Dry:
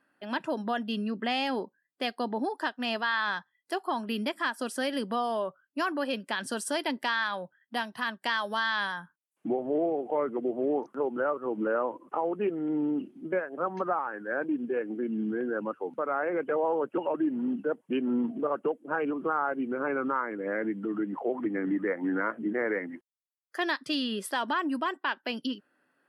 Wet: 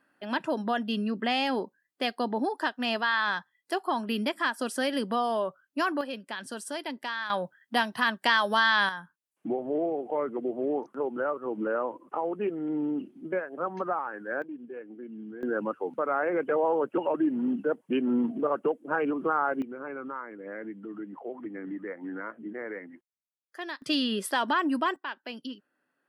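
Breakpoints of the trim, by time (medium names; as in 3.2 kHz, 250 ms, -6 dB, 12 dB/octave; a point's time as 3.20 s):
+2 dB
from 6.01 s -5 dB
from 7.30 s +6 dB
from 8.89 s -1 dB
from 14.42 s -10.5 dB
from 15.43 s +2 dB
from 19.62 s -8 dB
from 23.82 s +3 dB
from 24.96 s -6 dB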